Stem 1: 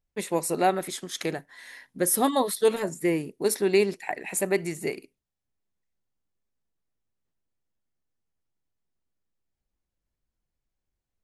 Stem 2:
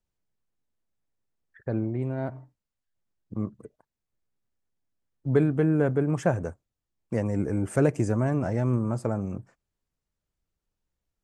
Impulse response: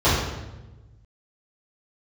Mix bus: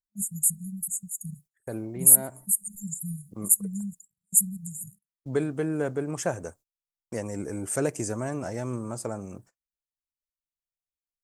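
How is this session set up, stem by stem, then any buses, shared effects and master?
+2.5 dB, 0.00 s, no send, brick-wall band-stop 210–6,700 Hz; reverb reduction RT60 1.7 s
−3.0 dB, 0.00 s, no send, bass and treble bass −7 dB, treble +8 dB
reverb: not used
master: noise gate −52 dBFS, range −23 dB; high-shelf EQ 6,200 Hz +10.5 dB

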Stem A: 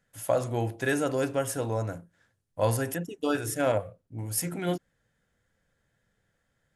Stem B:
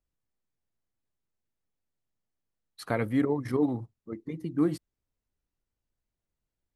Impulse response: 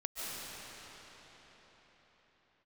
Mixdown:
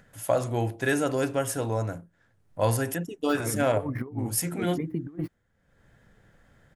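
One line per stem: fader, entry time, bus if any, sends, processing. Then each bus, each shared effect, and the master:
+2.0 dB, 0.00 s, no send, no processing
+0.5 dB, 0.50 s, no send, running median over 5 samples; flat-topped bell 5,100 Hz −12.5 dB; compressor whose output falls as the input rises −32 dBFS, ratio −0.5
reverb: not used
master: upward compression, threshold −44 dBFS; parametric band 510 Hz −2.5 dB 0.23 octaves; one half of a high-frequency compander decoder only

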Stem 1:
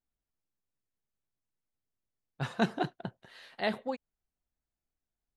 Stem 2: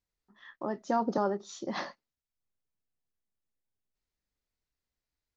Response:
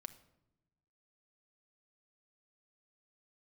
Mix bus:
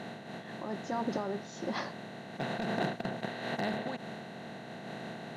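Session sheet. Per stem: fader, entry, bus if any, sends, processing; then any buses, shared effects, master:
−4.5 dB, 0.00 s, no send, compressor on every frequency bin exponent 0.2; high-pass filter 94 Hz; gain into a clipping stage and back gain 15.5 dB
+2.0 dB, 0.00 s, no send, brickwall limiter −24.5 dBFS, peak gain reduction 8 dB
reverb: not used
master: amplitude modulation by smooth noise, depth 60%

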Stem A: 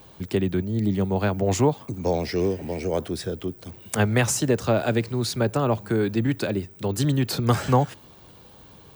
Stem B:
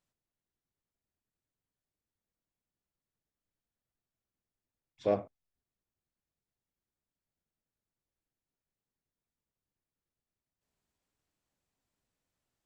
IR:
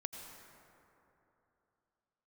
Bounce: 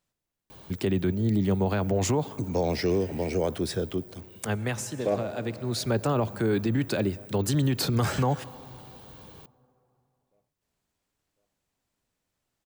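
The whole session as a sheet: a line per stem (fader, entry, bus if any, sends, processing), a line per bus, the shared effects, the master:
−0.5 dB, 0.50 s, send −17 dB, no echo send, automatic ducking −16 dB, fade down 1.10 s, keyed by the second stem
+3.0 dB, 0.00 s, send −7 dB, echo send −21 dB, no processing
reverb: on, RT60 3.1 s, pre-delay 78 ms
echo: repeating echo 1,051 ms, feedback 46%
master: brickwall limiter −16.5 dBFS, peak gain reduction 9 dB

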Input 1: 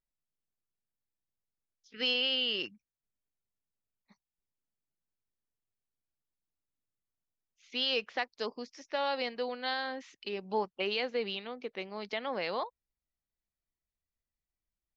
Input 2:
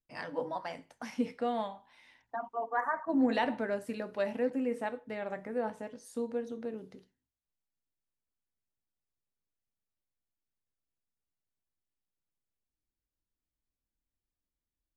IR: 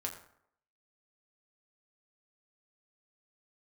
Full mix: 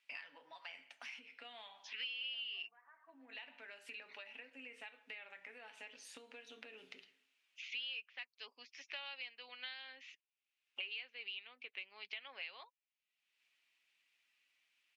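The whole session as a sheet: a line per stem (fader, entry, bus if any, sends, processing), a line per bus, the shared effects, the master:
−2.5 dB, 0.00 s, muted 0:10.21–0:10.76, no send, no processing
−9.0 dB, 0.00 s, send −8 dB, downward compressor 16 to 1, threshold −41 dBFS, peak gain reduction 19 dB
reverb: on, RT60 0.70 s, pre-delay 5 ms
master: resonant band-pass 2,600 Hz, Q 4.1; comb filter 7.2 ms, depth 34%; multiband upward and downward compressor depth 100%

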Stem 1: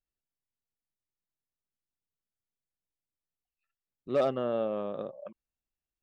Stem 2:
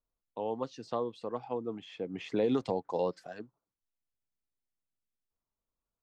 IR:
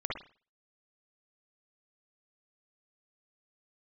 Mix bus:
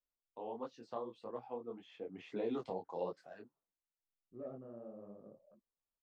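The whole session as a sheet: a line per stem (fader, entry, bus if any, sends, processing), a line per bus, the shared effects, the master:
−11.0 dB, 0.25 s, no send, drawn EQ curve 220 Hz 0 dB, 1,700 Hz −13 dB, 3,500 Hz −28 dB
−2.5 dB, 0.00 s, no send, low-shelf EQ 250 Hz −8.5 dB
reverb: not used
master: high-shelf EQ 2,800 Hz −9.5 dB; micro pitch shift up and down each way 55 cents

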